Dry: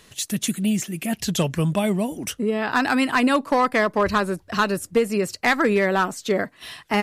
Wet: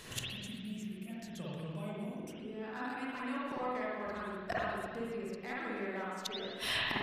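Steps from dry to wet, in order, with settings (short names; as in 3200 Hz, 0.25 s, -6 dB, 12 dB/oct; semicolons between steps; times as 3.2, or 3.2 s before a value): flipped gate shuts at -23 dBFS, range -27 dB; spring tank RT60 1.6 s, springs 48/56 ms, chirp 75 ms, DRR -7 dB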